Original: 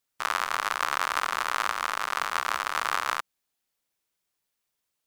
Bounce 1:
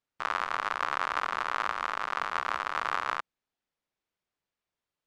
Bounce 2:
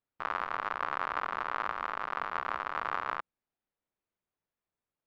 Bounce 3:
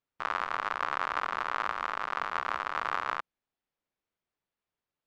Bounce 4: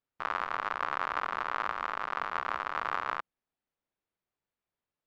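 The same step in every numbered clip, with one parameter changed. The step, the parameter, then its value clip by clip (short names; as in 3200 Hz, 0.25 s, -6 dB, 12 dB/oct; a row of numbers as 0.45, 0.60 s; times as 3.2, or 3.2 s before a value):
tape spacing loss, at 10 kHz: 20, 45, 29, 37 dB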